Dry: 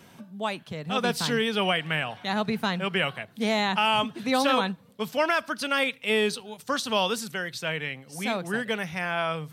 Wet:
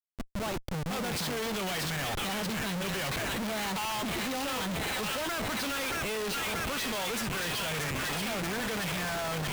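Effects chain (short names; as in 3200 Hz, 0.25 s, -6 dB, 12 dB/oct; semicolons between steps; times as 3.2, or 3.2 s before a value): tremolo 16 Hz, depth 55%; thin delay 0.63 s, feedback 69%, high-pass 1700 Hz, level -4 dB; Schmitt trigger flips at -40 dBFS; gain -3 dB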